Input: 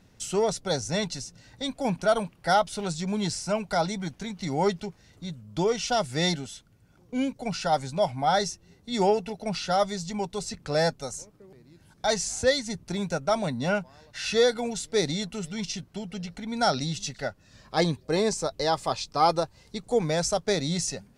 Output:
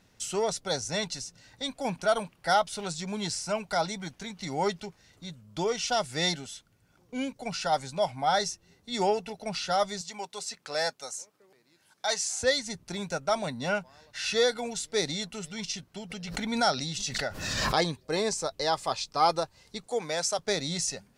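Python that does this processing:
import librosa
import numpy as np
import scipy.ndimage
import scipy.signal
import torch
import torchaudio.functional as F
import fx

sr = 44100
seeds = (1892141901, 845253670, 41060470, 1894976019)

y = fx.highpass(x, sr, hz=670.0, slope=6, at=(10.01, 12.42))
y = fx.pre_swell(y, sr, db_per_s=31.0, at=(16.09, 17.87), fade=0.02)
y = fx.highpass(y, sr, hz=400.0, slope=6, at=(19.86, 20.39))
y = fx.low_shelf(y, sr, hz=490.0, db=-7.5)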